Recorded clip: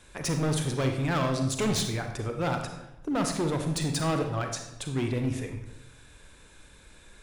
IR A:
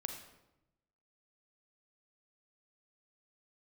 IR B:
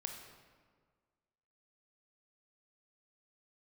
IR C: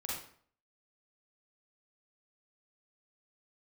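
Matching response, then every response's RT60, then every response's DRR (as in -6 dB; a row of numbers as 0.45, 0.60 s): A; 0.90, 1.7, 0.55 s; 4.5, 3.0, -5.5 dB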